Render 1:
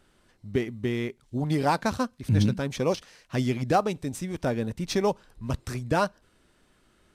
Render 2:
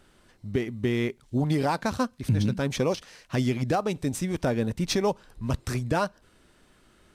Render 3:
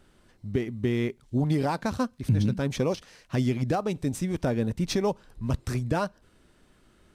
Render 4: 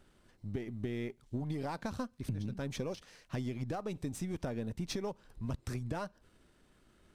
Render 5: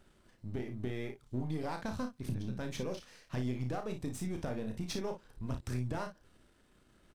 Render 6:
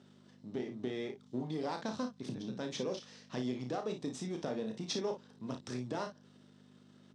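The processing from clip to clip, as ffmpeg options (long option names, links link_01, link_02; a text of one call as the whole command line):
ffmpeg -i in.wav -af "alimiter=limit=-19.5dB:level=0:latency=1:release=244,volume=4dB" out.wav
ffmpeg -i in.wav -af "lowshelf=frequency=460:gain=4.5,volume=-3.5dB" out.wav
ffmpeg -i in.wav -af "aeval=exprs='if(lt(val(0),0),0.708*val(0),val(0))':channel_layout=same,acompressor=threshold=-30dB:ratio=6,volume=-4dB" out.wav
ffmpeg -i in.wav -filter_complex "[0:a]aeval=exprs='if(lt(val(0),0),0.708*val(0),val(0))':channel_layout=same,asplit=2[link_01][link_02];[link_02]aecho=0:1:32|56:0.473|0.316[link_03];[link_01][link_03]amix=inputs=2:normalize=0" out.wav
ffmpeg -i in.wav -af "aeval=exprs='val(0)+0.00316*(sin(2*PI*50*n/s)+sin(2*PI*2*50*n/s)/2+sin(2*PI*3*50*n/s)/3+sin(2*PI*4*50*n/s)/4+sin(2*PI*5*50*n/s)/5)':channel_layout=same,highpass=frequency=160:width=0.5412,highpass=frequency=160:width=1.3066,equalizer=frequency=170:width_type=q:width=4:gain=-4,equalizer=frequency=440:width_type=q:width=4:gain=3,equalizer=frequency=1500:width_type=q:width=4:gain=-3,equalizer=frequency=2300:width_type=q:width=4:gain=-4,equalizer=frequency=3600:width_type=q:width=4:gain=5,equalizer=frequency=5400:width_type=q:width=4:gain=4,lowpass=frequency=7500:width=0.5412,lowpass=frequency=7500:width=1.3066,volume=1dB" out.wav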